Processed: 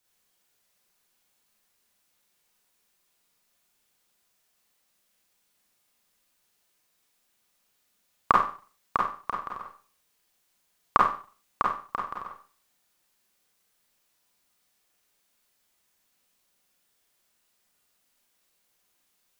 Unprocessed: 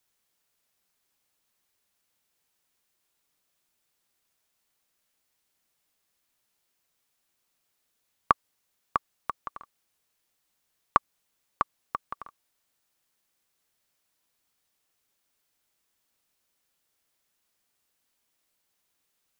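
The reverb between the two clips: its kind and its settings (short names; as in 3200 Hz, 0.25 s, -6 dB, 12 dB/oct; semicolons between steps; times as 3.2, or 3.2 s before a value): Schroeder reverb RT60 0.4 s, combs from 31 ms, DRR -3 dB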